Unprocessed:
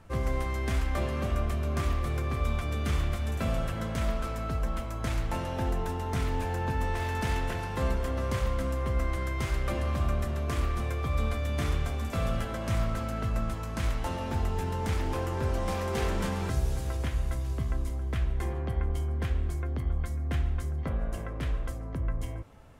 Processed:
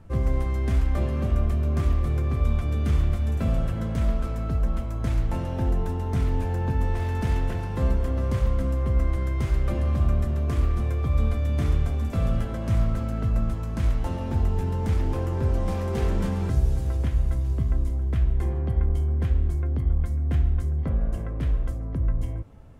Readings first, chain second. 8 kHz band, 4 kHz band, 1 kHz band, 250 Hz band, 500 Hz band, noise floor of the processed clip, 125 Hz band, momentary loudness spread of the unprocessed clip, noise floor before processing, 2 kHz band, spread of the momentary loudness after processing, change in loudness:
-4.5 dB, -4.5 dB, -2.0 dB, +5.0 dB, +1.0 dB, -30 dBFS, +6.5 dB, 3 LU, -35 dBFS, -3.5 dB, 3 LU, +5.5 dB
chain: low shelf 490 Hz +11.5 dB; gain -4.5 dB

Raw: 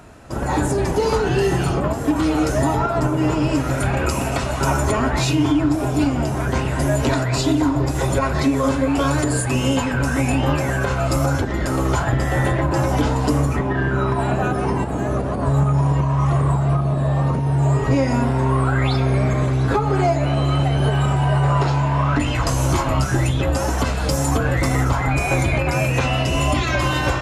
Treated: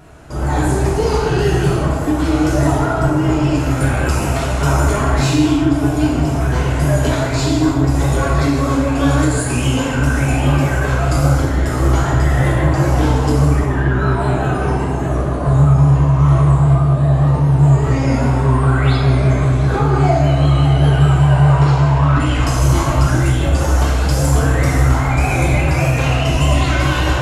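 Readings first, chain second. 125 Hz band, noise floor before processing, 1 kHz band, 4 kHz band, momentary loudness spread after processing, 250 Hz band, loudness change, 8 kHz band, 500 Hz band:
+6.0 dB, -23 dBFS, +2.0 dB, +2.5 dB, 5 LU, +3.5 dB, +4.5 dB, +2.0 dB, +2.0 dB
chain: low shelf 120 Hz +5 dB; vibrato 5 Hz 74 cents; non-linear reverb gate 0.38 s falling, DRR -3.5 dB; gain -3 dB

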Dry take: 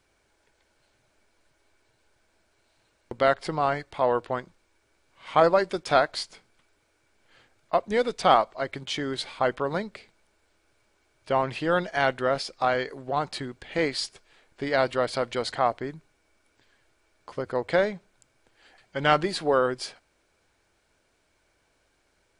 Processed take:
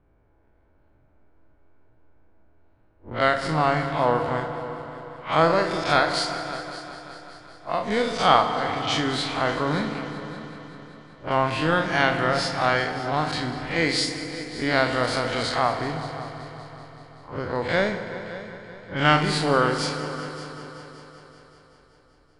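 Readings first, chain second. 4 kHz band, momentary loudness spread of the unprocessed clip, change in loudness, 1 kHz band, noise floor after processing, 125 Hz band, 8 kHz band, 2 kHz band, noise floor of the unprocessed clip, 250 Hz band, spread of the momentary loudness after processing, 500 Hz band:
+6.0 dB, 13 LU, +2.5 dB, +3.0 dB, -59 dBFS, +8.5 dB, +6.0 dB, +6.0 dB, -70 dBFS, +6.0 dB, 19 LU, +0.5 dB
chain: time blur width 96 ms; bell 490 Hz -8 dB 1.7 oct; in parallel at 0 dB: compressor, threshold -43 dBFS, peak gain reduction 21 dB; on the sum: low-pass opened by the level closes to 630 Hz, open at -29.5 dBFS; on a send: multi-head echo 0.191 s, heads all three, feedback 53%, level -18.5 dB; on the sum: FDN reverb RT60 3.6 s, high-frequency decay 0.5×, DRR 7.5 dB; gain +7.5 dB

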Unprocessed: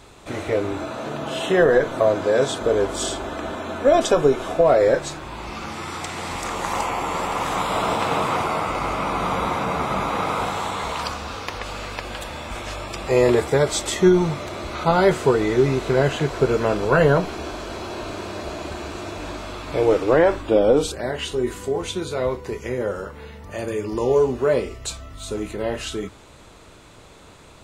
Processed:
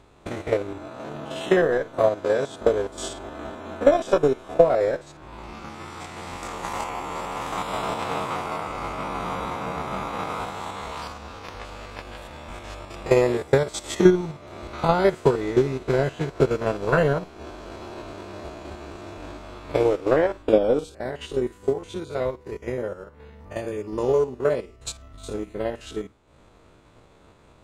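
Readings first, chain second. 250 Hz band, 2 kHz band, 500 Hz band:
-3.0 dB, -5.0 dB, -3.0 dB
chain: stepped spectrum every 50 ms; transient shaper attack +10 dB, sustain -8 dB; mismatched tape noise reduction decoder only; gain -5 dB

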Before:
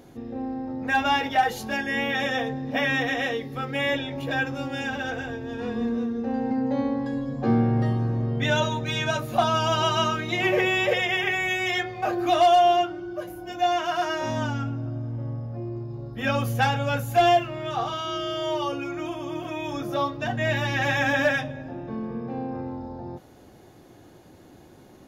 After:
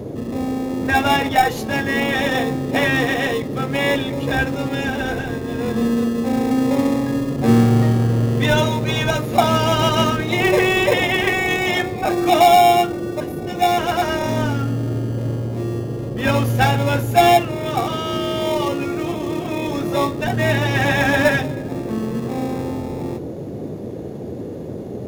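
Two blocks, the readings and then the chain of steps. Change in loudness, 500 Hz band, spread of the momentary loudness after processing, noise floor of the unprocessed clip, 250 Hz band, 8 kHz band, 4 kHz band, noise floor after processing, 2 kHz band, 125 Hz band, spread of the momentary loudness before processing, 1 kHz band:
+6.5 dB, +7.0 dB, 11 LU, -50 dBFS, +8.5 dB, +9.5 dB, +5.5 dB, -29 dBFS, +5.0 dB, +8.5 dB, 12 LU, +5.5 dB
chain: in parallel at -6 dB: sample-and-hold 29×; on the sum: band noise 82–500 Hz -34 dBFS; gain +4.5 dB

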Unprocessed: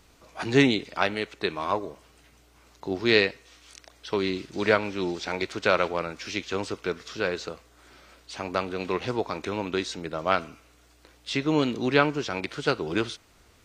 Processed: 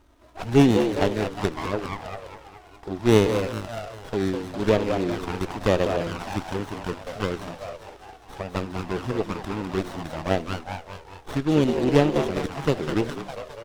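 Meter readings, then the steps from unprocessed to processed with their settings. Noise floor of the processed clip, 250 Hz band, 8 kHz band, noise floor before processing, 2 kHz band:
-49 dBFS, +4.5 dB, +2.0 dB, -59 dBFS, -5.0 dB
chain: frequency-shifting echo 0.203 s, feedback 59%, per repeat +79 Hz, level -5.5 dB; envelope flanger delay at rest 3.3 ms, full sweep at -19.5 dBFS; running maximum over 17 samples; gain +3.5 dB

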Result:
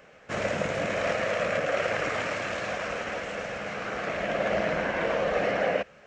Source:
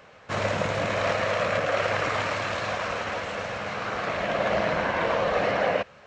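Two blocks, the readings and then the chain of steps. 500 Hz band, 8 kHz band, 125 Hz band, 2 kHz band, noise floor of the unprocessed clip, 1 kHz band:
-1.5 dB, -1.5 dB, -5.0 dB, -2.0 dB, -51 dBFS, -4.5 dB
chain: fifteen-band EQ 100 Hz -9 dB, 1000 Hz -8 dB, 4000 Hz -7 dB

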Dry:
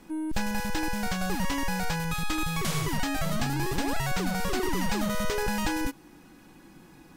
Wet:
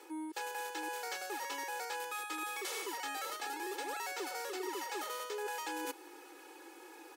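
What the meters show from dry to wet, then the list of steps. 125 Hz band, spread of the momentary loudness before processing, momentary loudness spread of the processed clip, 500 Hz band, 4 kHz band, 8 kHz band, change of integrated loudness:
under -40 dB, 2 LU, 14 LU, -8.0 dB, -8.5 dB, -7.5 dB, -10.0 dB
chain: steep high-pass 340 Hz 36 dB/oct; comb 2.3 ms, depth 99%; reverse; compressor 6:1, threshold -38 dBFS, peak gain reduction 15.5 dB; reverse

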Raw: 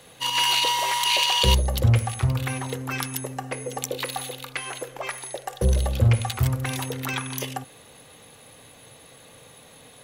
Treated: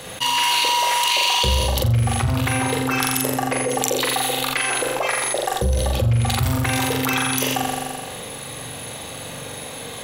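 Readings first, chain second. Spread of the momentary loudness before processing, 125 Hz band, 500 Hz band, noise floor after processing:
13 LU, +1.5 dB, +7.5 dB, -34 dBFS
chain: gate with hold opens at -35 dBFS; on a send: flutter echo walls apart 7.3 m, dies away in 0.73 s; on the sum: soft clip -3 dBFS, distortion -25 dB; fast leveller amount 70%; gain -5.5 dB

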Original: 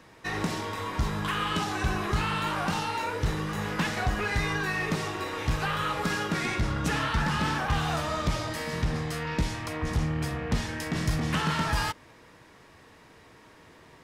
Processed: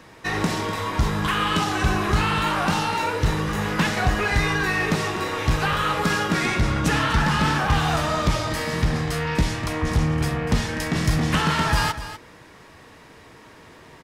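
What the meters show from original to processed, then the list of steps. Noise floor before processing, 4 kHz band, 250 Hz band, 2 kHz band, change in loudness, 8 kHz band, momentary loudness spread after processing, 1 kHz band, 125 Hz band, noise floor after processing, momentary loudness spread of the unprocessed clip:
-54 dBFS, +6.5 dB, +7.0 dB, +6.5 dB, +6.5 dB, +6.5 dB, 5 LU, +6.5 dB, +6.5 dB, -48 dBFS, 5 LU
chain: echo 0.247 s -12.5 dB; gain +6.5 dB

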